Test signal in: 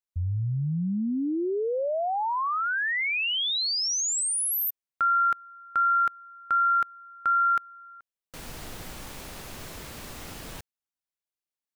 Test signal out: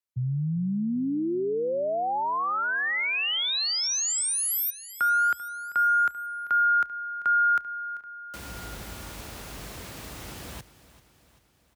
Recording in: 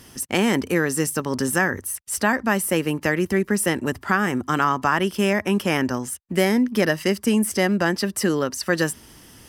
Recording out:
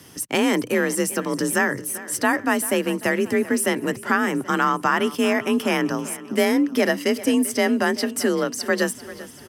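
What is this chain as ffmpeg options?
ffmpeg -i in.wav -af "afreqshift=38,aecho=1:1:390|780|1170|1560|1950:0.141|0.0791|0.0443|0.0248|0.0139" out.wav

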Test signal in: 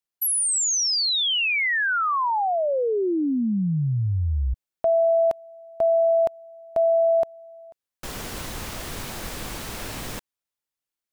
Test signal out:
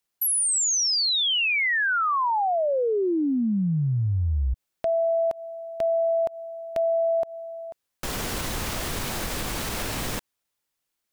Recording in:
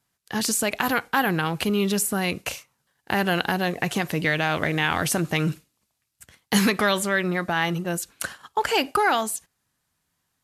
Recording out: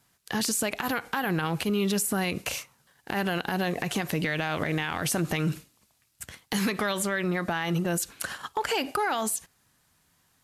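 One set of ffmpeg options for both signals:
ffmpeg -i in.wav -af "acompressor=threshold=-30dB:ratio=6:attack=0.4:release=187:knee=6:detection=peak,volume=8dB" out.wav

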